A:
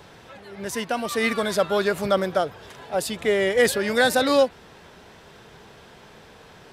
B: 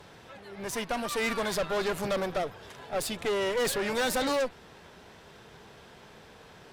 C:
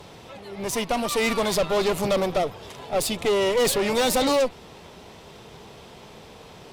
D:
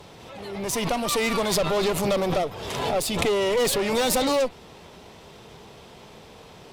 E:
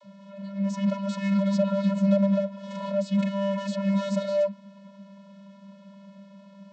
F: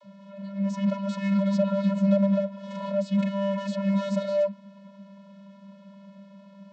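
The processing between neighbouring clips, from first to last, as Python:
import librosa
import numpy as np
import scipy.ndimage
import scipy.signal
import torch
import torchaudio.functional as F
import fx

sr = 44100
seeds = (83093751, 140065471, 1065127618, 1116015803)

y1 = fx.tube_stage(x, sr, drive_db=25.0, bias=0.7)
y2 = fx.peak_eq(y1, sr, hz=1600.0, db=-9.5, octaves=0.47)
y2 = y2 * 10.0 ** (7.5 / 20.0)
y3 = fx.pre_swell(y2, sr, db_per_s=37.0)
y3 = y3 * 10.0 ** (-1.5 / 20.0)
y4 = fx.vocoder(y3, sr, bands=32, carrier='square', carrier_hz=197.0)
y5 = fx.high_shelf(y4, sr, hz=5500.0, db=-6.0)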